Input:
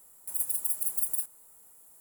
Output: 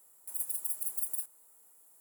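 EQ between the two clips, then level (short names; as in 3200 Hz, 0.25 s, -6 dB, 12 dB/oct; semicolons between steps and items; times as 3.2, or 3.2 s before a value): HPF 240 Hz 12 dB/oct; -5.0 dB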